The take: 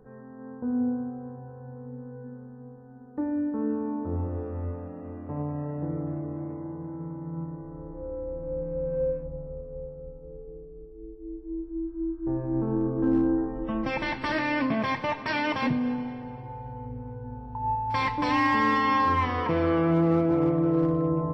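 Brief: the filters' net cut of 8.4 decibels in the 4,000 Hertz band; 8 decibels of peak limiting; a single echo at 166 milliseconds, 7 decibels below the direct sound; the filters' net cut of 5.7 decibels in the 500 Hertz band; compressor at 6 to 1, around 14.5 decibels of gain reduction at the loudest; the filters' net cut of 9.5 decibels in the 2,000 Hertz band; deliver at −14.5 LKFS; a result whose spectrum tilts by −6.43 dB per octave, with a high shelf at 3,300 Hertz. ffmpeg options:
ffmpeg -i in.wav -af "equalizer=frequency=500:width_type=o:gain=-7,equalizer=frequency=2000:width_type=o:gain=-8.5,highshelf=frequency=3300:gain=-6,equalizer=frequency=4000:width_type=o:gain=-3.5,acompressor=threshold=-38dB:ratio=6,alimiter=level_in=12dB:limit=-24dB:level=0:latency=1,volume=-12dB,aecho=1:1:166:0.447,volume=29dB" out.wav

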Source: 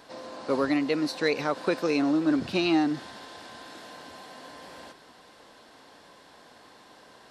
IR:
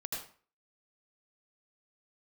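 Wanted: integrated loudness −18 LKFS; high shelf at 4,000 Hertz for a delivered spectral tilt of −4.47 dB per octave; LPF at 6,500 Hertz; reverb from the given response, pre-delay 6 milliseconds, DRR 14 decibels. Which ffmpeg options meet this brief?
-filter_complex "[0:a]lowpass=6500,highshelf=frequency=4000:gain=-6,asplit=2[link_01][link_02];[1:a]atrim=start_sample=2205,adelay=6[link_03];[link_02][link_03]afir=irnorm=-1:irlink=0,volume=-15dB[link_04];[link_01][link_04]amix=inputs=2:normalize=0,volume=8.5dB"

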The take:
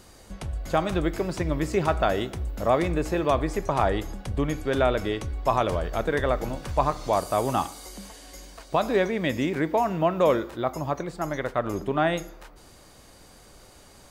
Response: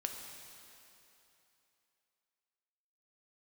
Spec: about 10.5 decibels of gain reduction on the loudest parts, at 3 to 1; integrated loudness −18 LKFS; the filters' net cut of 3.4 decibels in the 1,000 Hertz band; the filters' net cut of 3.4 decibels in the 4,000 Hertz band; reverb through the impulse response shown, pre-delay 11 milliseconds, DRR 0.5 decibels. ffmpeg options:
-filter_complex "[0:a]equalizer=frequency=1000:width_type=o:gain=-4.5,equalizer=frequency=4000:width_type=o:gain=-4,acompressor=threshold=-33dB:ratio=3,asplit=2[link_01][link_02];[1:a]atrim=start_sample=2205,adelay=11[link_03];[link_02][link_03]afir=irnorm=-1:irlink=0,volume=-1dB[link_04];[link_01][link_04]amix=inputs=2:normalize=0,volume=15.5dB"

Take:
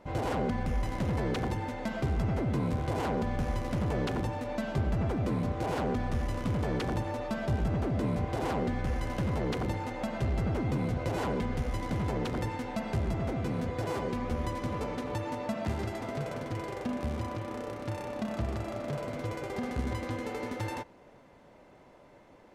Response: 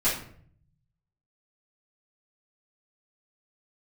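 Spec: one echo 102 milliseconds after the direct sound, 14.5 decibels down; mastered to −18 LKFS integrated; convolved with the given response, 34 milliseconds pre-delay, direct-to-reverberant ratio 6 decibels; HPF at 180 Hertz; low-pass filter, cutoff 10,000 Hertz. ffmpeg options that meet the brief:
-filter_complex "[0:a]highpass=180,lowpass=10000,aecho=1:1:102:0.188,asplit=2[link_01][link_02];[1:a]atrim=start_sample=2205,adelay=34[link_03];[link_02][link_03]afir=irnorm=-1:irlink=0,volume=-17.5dB[link_04];[link_01][link_04]amix=inputs=2:normalize=0,volume=16dB"

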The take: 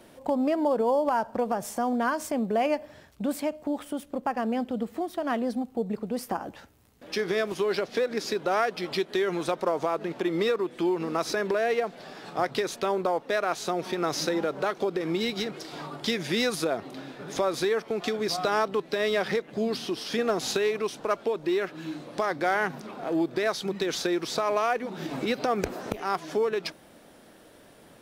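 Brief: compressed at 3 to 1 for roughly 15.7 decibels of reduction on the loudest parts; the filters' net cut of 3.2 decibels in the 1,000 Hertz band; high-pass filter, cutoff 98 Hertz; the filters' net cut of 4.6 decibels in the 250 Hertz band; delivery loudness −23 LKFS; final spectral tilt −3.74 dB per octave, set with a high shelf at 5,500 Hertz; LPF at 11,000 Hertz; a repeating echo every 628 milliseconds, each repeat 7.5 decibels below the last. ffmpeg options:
ffmpeg -i in.wav -af "highpass=98,lowpass=11000,equalizer=frequency=250:width_type=o:gain=-6,equalizer=frequency=1000:width_type=o:gain=-4,highshelf=frequency=5500:gain=-3,acompressor=threshold=-46dB:ratio=3,aecho=1:1:628|1256|1884|2512|3140:0.422|0.177|0.0744|0.0312|0.0131,volume=21.5dB" out.wav

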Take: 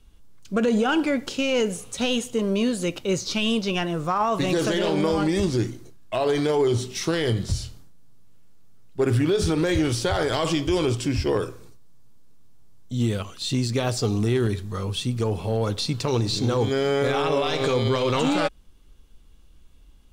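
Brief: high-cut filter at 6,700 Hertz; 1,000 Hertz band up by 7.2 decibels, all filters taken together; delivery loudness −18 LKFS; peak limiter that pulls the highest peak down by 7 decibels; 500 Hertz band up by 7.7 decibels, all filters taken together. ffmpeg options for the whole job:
ffmpeg -i in.wav -af "lowpass=6700,equalizer=frequency=500:width_type=o:gain=8,equalizer=frequency=1000:width_type=o:gain=6.5,volume=3.5dB,alimiter=limit=-8.5dB:level=0:latency=1" out.wav

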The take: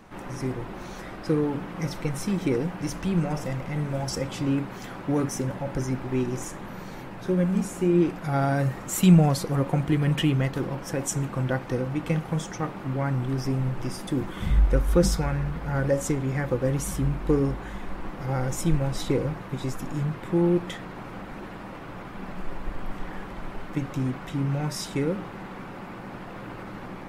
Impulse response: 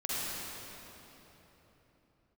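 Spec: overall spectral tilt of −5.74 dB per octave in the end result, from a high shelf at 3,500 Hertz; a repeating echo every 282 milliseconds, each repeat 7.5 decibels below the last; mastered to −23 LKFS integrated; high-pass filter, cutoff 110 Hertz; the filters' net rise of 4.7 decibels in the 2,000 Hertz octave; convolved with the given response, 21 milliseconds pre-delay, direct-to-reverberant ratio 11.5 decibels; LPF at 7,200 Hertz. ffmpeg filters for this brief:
-filter_complex "[0:a]highpass=110,lowpass=7200,equalizer=frequency=2000:width_type=o:gain=7,highshelf=frequency=3500:gain=-3.5,aecho=1:1:282|564|846|1128|1410:0.422|0.177|0.0744|0.0312|0.0131,asplit=2[link_01][link_02];[1:a]atrim=start_sample=2205,adelay=21[link_03];[link_02][link_03]afir=irnorm=-1:irlink=0,volume=-18dB[link_04];[link_01][link_04]amix=inputs=2:normalize=0,volume=3.5dB"

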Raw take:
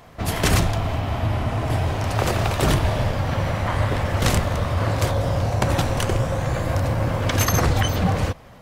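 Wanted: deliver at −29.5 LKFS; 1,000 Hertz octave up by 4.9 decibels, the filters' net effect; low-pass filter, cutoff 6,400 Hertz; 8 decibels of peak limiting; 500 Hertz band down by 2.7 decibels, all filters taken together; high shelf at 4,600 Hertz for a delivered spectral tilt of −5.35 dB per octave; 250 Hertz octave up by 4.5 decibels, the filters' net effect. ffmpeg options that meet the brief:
ffmpeg -i in.wav -af "lowpass=6400,equalizer=frequency=250:width_type=o:gain=8,equalizer=frequency=500:width_type=o:gain=-8.5,equalizer=frequency=1000:width_type=o:gain=8,highshelf=frequency=4600:gain=8,volume=-8dB,alimiter=limit=-18.5dB:level=0:latency=1" out.wav

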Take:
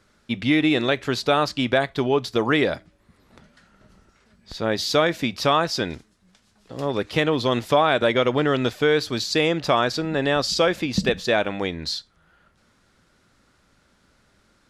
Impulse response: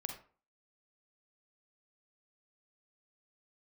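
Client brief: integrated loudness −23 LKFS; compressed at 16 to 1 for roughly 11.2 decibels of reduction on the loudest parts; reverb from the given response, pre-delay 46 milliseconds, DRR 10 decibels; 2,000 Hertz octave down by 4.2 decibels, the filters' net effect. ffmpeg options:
-filter_complex "[0:a]equalizer=frequency=2000:width_type=o:gain=-5.5,acompressor=threshold=-26dB:ratio=16,asplit=2[link_01][link_02];[1:a]atrim=start_sample=2205,adelay=46[link_03];[link_02][link_03]afir=irnorm=-1:irlink=0,volume=-9dB[link_04];[link_01][link_04]amix=inputs=2:normalize=0,volume=8dB"

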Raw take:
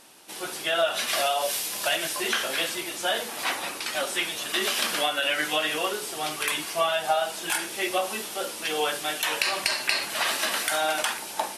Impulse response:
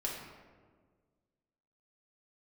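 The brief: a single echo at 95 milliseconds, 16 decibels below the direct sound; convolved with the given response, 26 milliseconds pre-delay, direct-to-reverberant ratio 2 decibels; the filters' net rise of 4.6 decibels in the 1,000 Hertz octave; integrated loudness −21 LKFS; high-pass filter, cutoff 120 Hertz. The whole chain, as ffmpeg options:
-filter_complex "[0:a]highpass=120,equalizer=frequency=1000:width_type=o:gain=6.5,aecho=1:1:95:0.158,asplit=2[link_01][link_02];[1:a]atrim=start_sample=2205,adelay=26[link_03];[link_02][link_03]afir=irnorm=-1:irlink=0,volume=-5dB[link_04];[link_01][link_04]amix=inputs=2:normalize=0,volume=1.5dB"

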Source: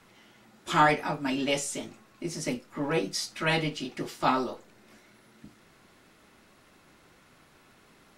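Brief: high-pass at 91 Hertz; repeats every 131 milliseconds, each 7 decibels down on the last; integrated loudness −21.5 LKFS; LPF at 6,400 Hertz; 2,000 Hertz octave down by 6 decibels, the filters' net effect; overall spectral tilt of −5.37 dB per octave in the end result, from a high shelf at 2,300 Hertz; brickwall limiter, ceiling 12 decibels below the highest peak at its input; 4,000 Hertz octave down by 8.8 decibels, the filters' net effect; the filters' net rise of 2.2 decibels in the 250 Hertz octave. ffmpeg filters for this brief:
ffmpeg -i in.wav -af "highpass=91,lowpass=6400,equalizer=frequency=250:width_type=o:gain=3,equalizer=frequency=2000:width_type=o:gain=-3.5,highshelf=frequency=2300:gain=-6.5,equalizer=frequency=4000:width_type=o:gain=-4,alimiter=limit=-23dB:level=0:latency=1,aecho=1:1:131|262|393|524|655:0.447|0.201|0.0905|0.0407|0.0183,volume=11.5dB" out.wav

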